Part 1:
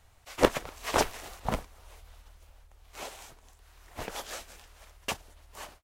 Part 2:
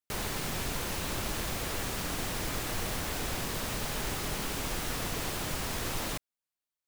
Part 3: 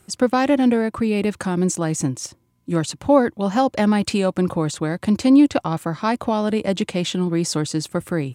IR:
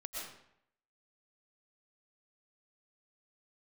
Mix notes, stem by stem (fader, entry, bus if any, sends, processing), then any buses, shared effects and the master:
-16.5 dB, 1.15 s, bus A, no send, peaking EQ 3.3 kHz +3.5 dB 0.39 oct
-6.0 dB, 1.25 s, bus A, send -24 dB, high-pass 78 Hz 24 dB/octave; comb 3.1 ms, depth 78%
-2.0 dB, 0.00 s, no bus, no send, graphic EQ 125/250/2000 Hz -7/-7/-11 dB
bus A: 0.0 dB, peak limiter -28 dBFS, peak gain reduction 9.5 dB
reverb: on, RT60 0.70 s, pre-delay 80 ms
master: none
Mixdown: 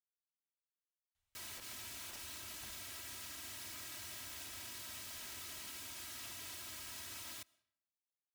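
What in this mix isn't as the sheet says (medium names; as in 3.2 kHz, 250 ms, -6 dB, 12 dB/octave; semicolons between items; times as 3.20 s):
stem 3: muted; master: extra amplifier tone stack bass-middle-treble 5-5-5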